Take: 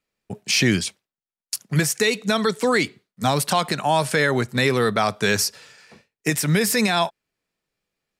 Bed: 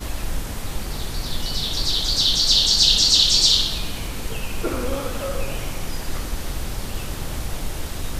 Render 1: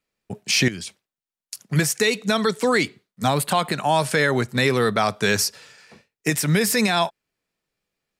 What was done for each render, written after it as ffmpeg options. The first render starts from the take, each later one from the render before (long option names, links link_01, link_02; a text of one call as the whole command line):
ffmpeg -i in.wav -filter_complex "[0:a]asettb=1/sr,asplit=3[link_01][link_02][link_03];[link_01]atrim=end=0.684[link_04];[link_02]atrim=start=0.68:end=1.59,asetpts=PTS-STARTPTS,afade=type=in:duration=0.004:curve=qsin,afade=type=out:start_time=0.906:duration=0.004:curve=qsin,acompressor=threshold=-29dB:ratio=6:attack=3.2:release=140:knee=1:detection=peak[link_05];[link_03]atrim=start=1.586[link_06];[link_04][link_05]acrossfade=duration=0.004:curve1=hsin:curve2=qsin[link_07];[link_07][link_06]acrossfade=duration=0.004:curve1=qsin:curve2=hsin,asettb=1/sr,asplit=3[link_08][link_09][link_10];[link_08]atrim=end=3.284[link_11];[link_09]atrim=start=3.28:end=3.75,asetpts=PTS-STARTPTS,afade=type=in:duration=0.004:curve=qsin,afade=type=out:start_time=0.466:duration=0.004:curve=qsin,equalizer=frequency=5600:width=3.6:gain=-14[link_12];[link_10]atrim=start=3.746[link_13];[link_11][link_12]acrossfade=duration=0.004:curve1=hsin:curve2=qsin[link_14];[link_14][link_13]acrossfade=duration=0.004:curve1=qsin:curve2=hsin" out.wav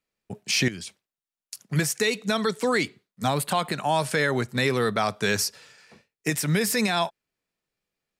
ffmpeg -i in.wav -af "volume=-4dB" out.wav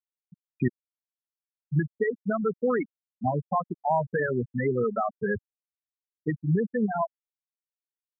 ffmpeg -i in.wav -af "lowpass=2000,afftfilt=real='re*gte(hypot(re,im),0.251)':imag='im*gte(hypot(re,im),0.251)':win_size=1024:overlap=0.75" out.wav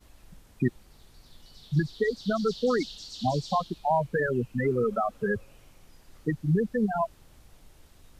ffmpeg -i in.wav -i bed.wav -filter_complex "[1:a]volume=-27dB[link_01];[0:a][link_01]amix=inputs=2:normalize=0" out.wav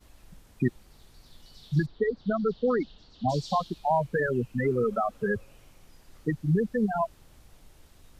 ffmpeg -i in.wav -filter_complex "[0:a]asplit=3[link_01][link_02][link_03];[link_01]afade=type=out:start_time=1.85:duration=0.02[link_04];[link_02]lowpass=1700,afade=type=in:start_time=1.85:duration=0.02,afade=type=out:start_time=3.28:duration=0.02[link_05];[link_03]afade=type=in:start_time=3.28:duration=0.02[link_06];[link_04][link_05][link_06]amix=inputs=3:normalize=0" out.wav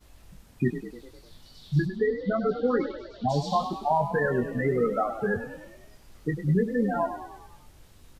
ffmpeg -i in.wav -filter_complex "[0:a]asplit=2[link_01][link_02];[link_02]adelay=21,volume=-7dB[link_03];[link_01][link_03]amix=inputs=2:normalize=0,asplit=7[link_04][link_05][link_06][link_07][link_08][link_09][link_10];[link_05]adelay=101,afreqshift=35,volume=-10.5dB[link_11];[link_06]adelay=202,afreqshift=70,volume=-15.5dB[link_12];[link_07]adelay=303,afreqshift=105,volume=-20.6dB[link_13];[link_08]adelay=404,afreqshift=140,volume=-25.6dB[link_14];[link_09]adelay=505,afreqshift=175,volume=-30.6dB[link_15];[link_10]adelay=606,afreqshift=210,volume=-35.7dB[link_16];[link_04][link_11][link_12][link_13][link_14][link_15][link_16]amix=inputs=7:normalize=0" out.wav